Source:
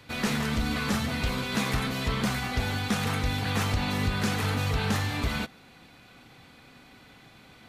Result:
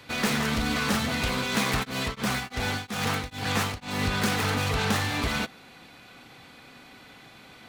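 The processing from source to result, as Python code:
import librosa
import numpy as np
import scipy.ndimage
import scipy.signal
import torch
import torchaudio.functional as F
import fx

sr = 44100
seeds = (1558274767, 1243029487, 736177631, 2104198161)

y = fx.self_delay(x, sr, depth_ms=0.11)
y = fx.low_shelf(y, sr, hz=180.0, db=-7.5)
y = fx.tremolo_abs(y, sr, hz=fx.line((1.82, 3.5), (4.05, 1.7)), at=(1.82, 4.05), fade=0.02)
y = y * 10.0 ** (4.5 / 20.0)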